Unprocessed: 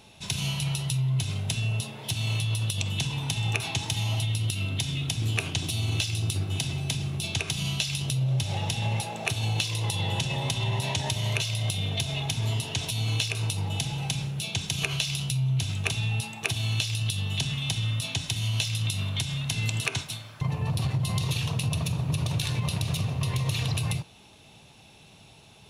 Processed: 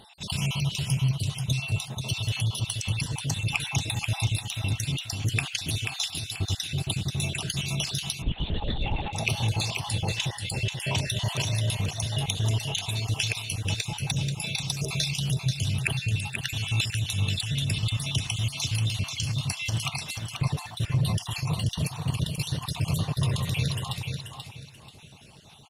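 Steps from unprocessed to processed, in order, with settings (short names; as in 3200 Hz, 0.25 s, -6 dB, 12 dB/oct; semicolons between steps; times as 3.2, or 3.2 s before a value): random spectral dropouts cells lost 57%; vibrato 2.4 Hz 5.8 cents; on a send: feedback echo 0.485 s, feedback 28%, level -6 dB; 8.22–9.13 on the sum: LPC vocoder at 8 kHz whisper; in parallel at -7 dB: one-sided clip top -26 dBFS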